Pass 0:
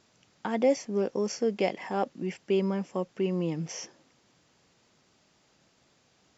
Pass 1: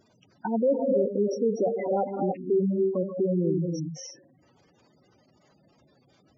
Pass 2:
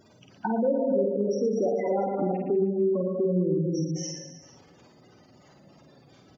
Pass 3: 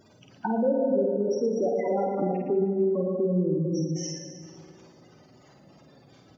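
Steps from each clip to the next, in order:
reverb whose tail is shaped and stops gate 320 ms rising, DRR 3.5 dB; soft clipping −22.5 dBFS, distortion −13 dB; gate on every frequency bin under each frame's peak −10 dB strong; level +5.5 dB
reverse bouncing-ball delay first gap 50 ms, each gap 1.3×, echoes 5; downward compressor 2 to 1, threshold −33 dBFS, peak gain reduction 9.5 dB; level +5 dB
dense smooth reverb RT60 2.9 s, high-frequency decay 0.65×, DRR 11 dB

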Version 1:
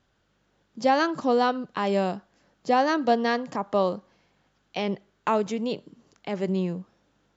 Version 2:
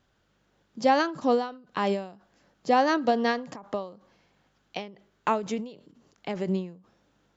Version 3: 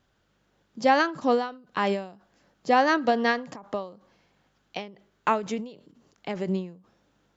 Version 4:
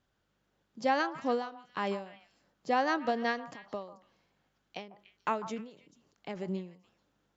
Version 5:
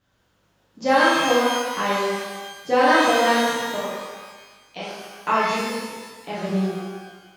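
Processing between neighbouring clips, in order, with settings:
every ending faded ahead of time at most 120 dB per second
dynamic equaliser 1,800 Hz, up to +5 dB, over −38 dBFS, Q 0.98
echo through a band-pass that steps 146 ms, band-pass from 940 Hz, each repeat 1.4 octaves, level −11 dB; level −8 dB
reverb with rising layers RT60 1.3 s, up +12 semitones, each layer −8 dB, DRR −9 dB; level +3 dB

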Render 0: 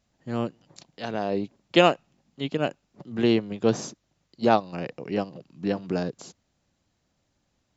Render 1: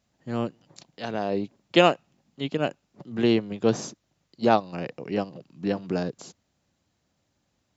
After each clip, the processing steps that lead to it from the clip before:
high-pass filter 56 Hz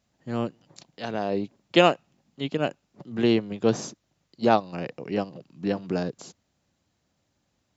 no processing that can be heard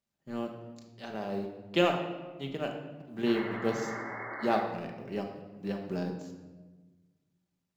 mu-law and A-law mismatch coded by A
sound drawn into the spectrogram noise, 0:03.26–0:04.62, 260–2,200 Hz −33 dBFS
rectangular room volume 920 cubic metres, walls mixed, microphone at 1.2 metres
level −9 dB

